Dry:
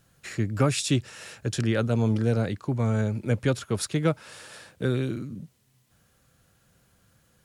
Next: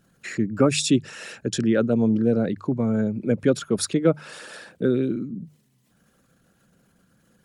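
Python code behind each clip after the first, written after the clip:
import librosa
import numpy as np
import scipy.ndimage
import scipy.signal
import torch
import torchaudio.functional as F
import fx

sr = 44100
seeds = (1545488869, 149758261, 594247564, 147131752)

y = fx.envelope_sharpen(x, sr, power=1.5)
y = fx.low_shelf_res(y, sr, hz=140.0, db=-8.5, q=1.5)
y = fx.hum_notches(y, sr, base_hz=50, count=3)
y = F.gain(torch.from_numpy(y), 4.5).numpy()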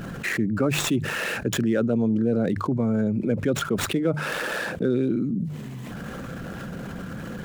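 y = scipy.ndimage.median_filter(x, 9, mode='constant')
y = fx.env_flatten(y, sr, amount_pct=70)
y = F.gain(torch.from_numpy(y), -6.0).numpy()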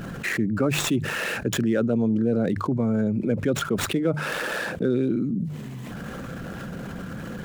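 y = x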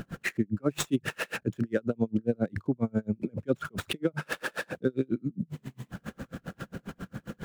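y = x * 10.0 ** (-38 * (0.5 - 0.5 * np.cos(2.0 * np.pi * 7.4 * np.arange(len(x)) / sr)) / 20.0)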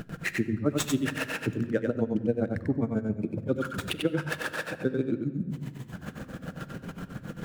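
y = x + 10.0 ** (-4.0 / 20.0) * np.pad(x, (int(94 * sr / 1000.0), 0))[:len(x)]
y = fx.room_shoebox(y, sr, seeds[0], volume_m3=3000.0, walls='mixed', distance_m=0.52)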